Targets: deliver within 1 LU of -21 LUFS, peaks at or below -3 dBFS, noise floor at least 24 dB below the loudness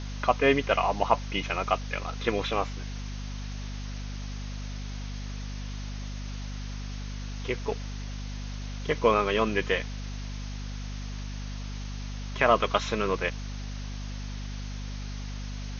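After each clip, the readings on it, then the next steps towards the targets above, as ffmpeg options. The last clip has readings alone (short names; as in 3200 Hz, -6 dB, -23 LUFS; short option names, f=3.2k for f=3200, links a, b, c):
hum 50 Hz; harmonics up to 250 Hz; hum level -33 dBFS; noise floor -36 dBFS; noise floor target -55 dBFS; loudness -31.0 LUFS; peak -6.5 dBFS; loudness target -21.0 LUFS
-> -af "bandreject=f=50:t=h:w=6,bandreject=f=100:t=h:w=6,bandreject=f=150:t=h:w=6,bandreject=f=200:t=h:w=6,bandreject=f=250:t=h:w=6"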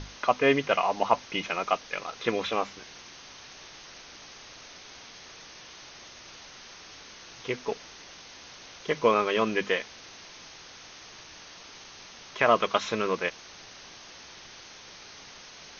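hum none; noise floor -48 dBFS; noise floor target -52 dBFS
-> -af "afftdn=nr=6:nf=-48"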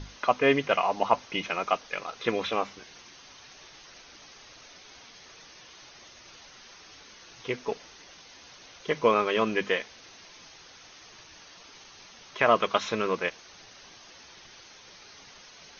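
noise floor -51 dBFS; noise floor target -52 dBFS
-> -af "afftdn=nr=6:nf=-51"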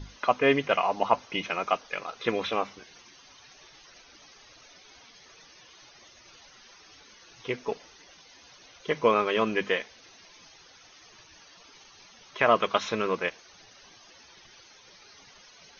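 noise floor -55 dBFS; loudness -27.5 LUFS; peak -6.5 dBFS; loudness target -21.0 LUFS
-> -af "volume=6.5dB,alimiter=limit=-3dB:level=0:latency=1"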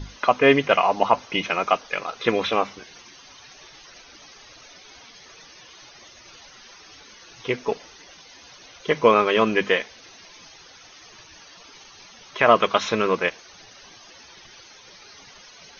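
loudness -21.0 LUFS; peak -3.0 dBFS; noise floor -48 dBFS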